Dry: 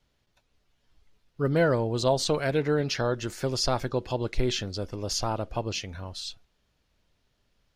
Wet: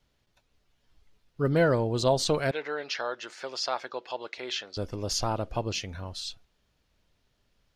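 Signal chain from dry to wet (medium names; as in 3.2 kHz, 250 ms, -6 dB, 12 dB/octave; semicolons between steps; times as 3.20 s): 2.51–4.77 s: band-pass 700–4700 Hz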